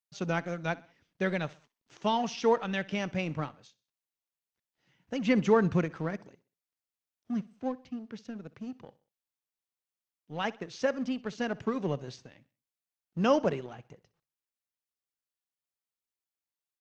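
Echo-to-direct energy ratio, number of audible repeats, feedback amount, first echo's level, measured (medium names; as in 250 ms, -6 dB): -20.0 dB, 2, 43%, -21.0 dB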